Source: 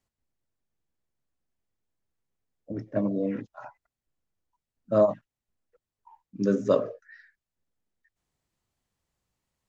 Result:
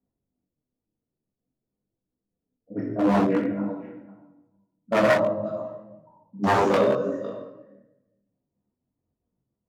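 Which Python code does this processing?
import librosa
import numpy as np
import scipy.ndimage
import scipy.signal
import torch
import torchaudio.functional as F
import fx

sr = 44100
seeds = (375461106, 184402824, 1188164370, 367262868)

p1 = fx.step_gate(x, sr, bpm=196, pattern='xx.xxx.x.', floor_db=-12.0, edge_ms=4.5)
p2 = fx.env_lowpass(p1, sr, base_hz=400.0, full_db=-23.5)
p3 = fx.rider(p2, sr, range_db=10, speed_s=0.5)
p4 = p2 + (p3 * librosa.db_to_amplitude(-2.0))
p5 = p4 + 10.0 ** (-18.0 / 20.0) * np.pad(p4, (int(507 * sr / 1000.0), 0))[:len(p4)]
p6 = fx.room_shoebox(p5, sr, seeds[0], volume_m3=430.0, walls='mixed', distance_m=1.8)
p7 = 10.0 ** (-14.5 / 20.0) * (np.abs((p6 / 10.0 ** (-14.5 / 20.0) + 3.0) % 4.0 - 2.0) - 1.0)
p8 = fx.highpass(p7, sr, hz=140.0, slope=6)
p9 = fx.low_shelf(p8, sr, hz=200.0, db=-5.5)
p10 = fx.detune_double(p9, sr, cents=19)
y = p10 * librosa.db_to_amplitude(6.0)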